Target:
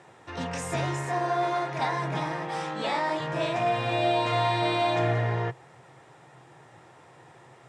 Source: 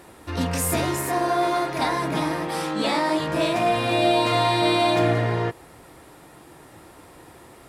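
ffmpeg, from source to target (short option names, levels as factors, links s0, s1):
-af "highpass=f=110:w=0.5412,highpass=f=110:w=1.3066,equalizer=f=130:t=q:w=4:g=10,equalizer=f=200:t=q:w=4:g=-6,equalizer=f=290:t=q:w=4:g=-8,equalizer=f=810:t=q:w=4:g=4,equalizer=f=1800:t=q:w=4:g=3,equalizer=f=4500:t=q:w=4:g=-6,lowpass=f=7400:w=0.5412,lowpass=f=7400:w=1.3066,volume=0.531"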